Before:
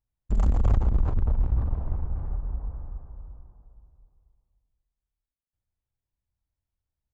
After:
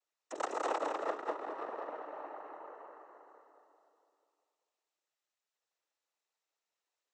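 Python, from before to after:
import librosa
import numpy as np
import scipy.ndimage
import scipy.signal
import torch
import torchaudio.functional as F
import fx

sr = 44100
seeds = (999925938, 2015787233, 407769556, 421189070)

y = scipy.signal.sosfilt(scipy.signal.ellip(4, 1.0, 60, 430.0, 'highpass', fs=sr, output='sos'), x)
y = fx.noise_vocoder(y, sr, seeds[0], bands=12)
y = y + 10.0 ** (-4.0 / 20.0) * np.pad(y, (int(200 * sr / 1000.0), 0))[:len(y)]
y = F.gain(torch.from_numpy(y), 5.5).numpy()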